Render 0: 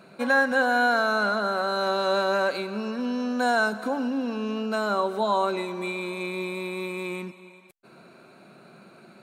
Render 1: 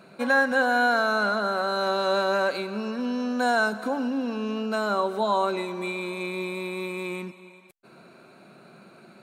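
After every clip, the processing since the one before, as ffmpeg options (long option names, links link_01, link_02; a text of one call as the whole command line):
ffmpeg -i in.wav -af anull out.wav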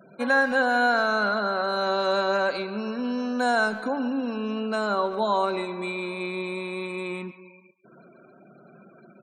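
ffmpeg -i in.wav -filter_complex "[0:a]afftfilt=real='re*gte(hypot(re,im),0.00501)':imag='im*gte(hypot(re,im),0.00501)':win_size=1024:overlap=0.75,asplit=2[link_01][link_02];[link_02]adelay=140,highpass=300,lowpass=3400,asoftclip=type=hard:threshold=-19dB,volume=-15dB[link_03];[link_01][link_03]amix=inputs=2:normalize=0" out.wav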